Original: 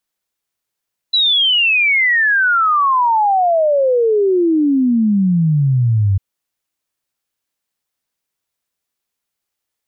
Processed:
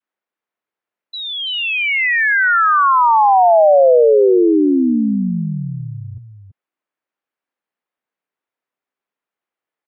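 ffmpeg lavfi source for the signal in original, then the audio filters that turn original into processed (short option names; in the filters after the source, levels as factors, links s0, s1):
-f lavfi -i "aevalsrc='0.299*clip(min(t,5.05-t)/0.01,0,1)*sin(2*PI*4000*5.05/log(94/4000)*(exp(log(94/4000)*t/5.05)-1))':d=5.05:s=44100"
-filter_complex "[0:a]acrossover=split=190 2500:gain=0.0631 1 0.0891[s0][s1][s2];[s0][s1][s2]amix=inputs=3:normalize=0,asplit=2[s3][s4];[s4]aecho=0:1:333:0.376[s5];[s3][s5]amix=inputs=2:normalize=0,adynamicequalizer=threshold=0.0631:dfrequency=560:dqfactor=1:tfrequency=560:tqfactor=1:attack=5:release=100:ratio=0.375:range=2:mode=boostabove:tftype=bell"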